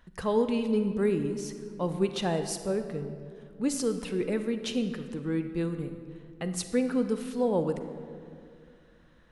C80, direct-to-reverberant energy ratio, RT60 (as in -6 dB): 10.0 dB, 8.0 dB, 2.4 s